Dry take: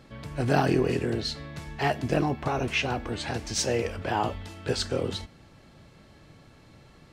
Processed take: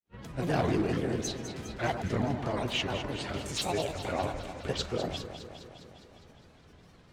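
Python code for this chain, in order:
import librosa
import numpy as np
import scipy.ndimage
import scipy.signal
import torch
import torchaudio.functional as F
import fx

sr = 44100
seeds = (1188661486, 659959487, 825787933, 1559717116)

p1 = np.clip(10.0 ** (18.0 / 20.0) * x, -1.0, 1.0) / 10.0 ** (18.0 / 20.0)
p2 = fx.granulator(p1, sr, seeds[0], grain_ms=100.0, per_s=20.0, spray_ms=12.0, spread_st=7)
p3 = p2 + fx.echo_alternate(p2, sr, ms=102, hz=1500.0, feedback_pct=81, wet_db=-8.0, dry=0)
p4 = fx.attack_slew(p3, sr, db_per_s=570.0)
y = p4 * librosa.db_to_amplitude(-3.5)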